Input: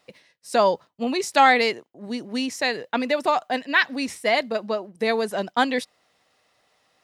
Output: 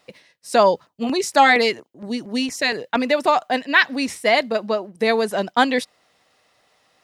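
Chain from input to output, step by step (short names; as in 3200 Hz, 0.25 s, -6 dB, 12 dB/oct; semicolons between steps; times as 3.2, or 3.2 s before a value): 0.63–3.01 LFO notch saw down 4.3 Hz 300–4600 Hz; gain +4 dB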